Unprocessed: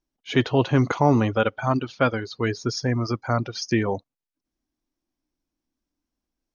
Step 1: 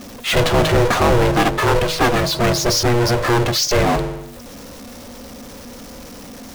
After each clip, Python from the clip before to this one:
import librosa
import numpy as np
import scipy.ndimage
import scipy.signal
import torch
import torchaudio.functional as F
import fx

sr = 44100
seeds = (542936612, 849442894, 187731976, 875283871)

y = fx.hum_notches(x, sr, base_hz=50, count=8)
y = y * np.sin(2.0 * np.pi * 240.0 * np.arange(len(y)) / sr)
y = fx.power_curve(y, sr, exponent=0.35)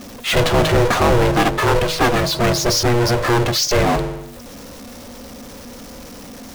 y = x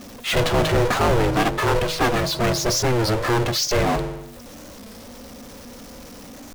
y = fx.record_warp(x, sr, rpm=33.33, depth_cents=160.0)
y = F.gain(torch.from_numpy(y), -4.0).numpy()